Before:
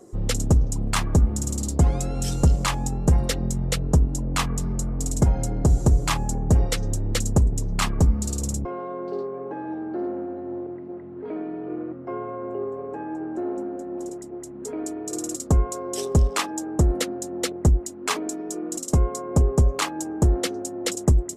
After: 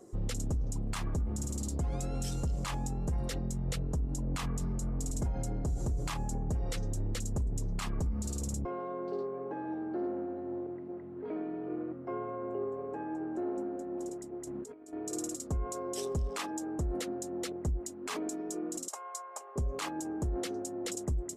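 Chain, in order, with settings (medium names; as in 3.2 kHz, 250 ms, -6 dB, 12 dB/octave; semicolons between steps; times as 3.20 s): 14.47–14.93 s: compressor with a negative ratio -37 dBFS, ratio -0.5; 18.88–19.56 s: high-pass 780 Hz 24 dB/octave; peak limiter -20.5 dBFS, peak gain reduction 11 dB; trim -6 dB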